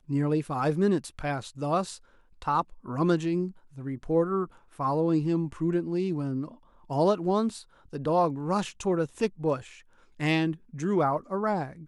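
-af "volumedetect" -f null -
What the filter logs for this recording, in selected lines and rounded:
mean_volume: -28.2 dB
max_volume: -12.7 dB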